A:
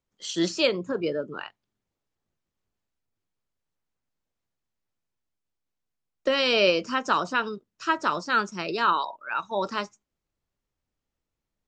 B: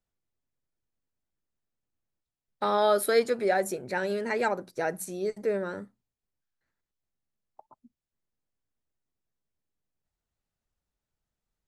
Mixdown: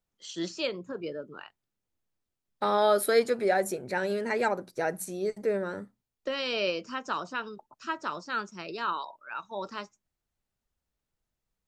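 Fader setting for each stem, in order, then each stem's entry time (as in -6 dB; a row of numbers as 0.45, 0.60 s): -8.5, 0.0 dB; 0.00, 0.00 s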